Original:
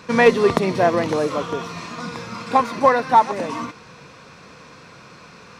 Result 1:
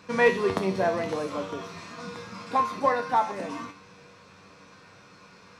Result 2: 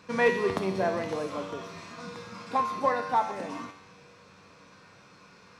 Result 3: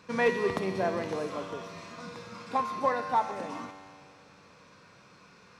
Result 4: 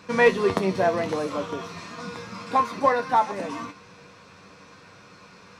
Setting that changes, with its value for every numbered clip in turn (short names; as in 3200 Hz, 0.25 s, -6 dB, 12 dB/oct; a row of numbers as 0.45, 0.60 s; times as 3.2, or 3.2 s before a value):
resonator, decay: 0.38, 0.89, 2.1, 0.16 s